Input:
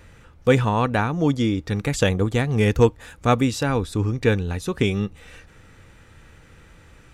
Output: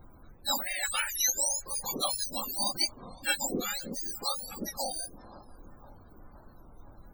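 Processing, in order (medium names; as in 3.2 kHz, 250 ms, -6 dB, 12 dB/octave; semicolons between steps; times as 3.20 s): spectrum inverted on a logarithmic axis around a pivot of 1.4 kHz; tape echo 514 ms, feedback 77%, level -18 dB, low-pass 1.9 kHz; added noise brown -44 dBFS; loudest bins only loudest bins 64; 0.83–2.24 s: graphic EQ 250/2000/8000 Hz -11/+6/+8 dB; warped record 33 1/3 rpm, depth 160 cents; trim -6.5 dB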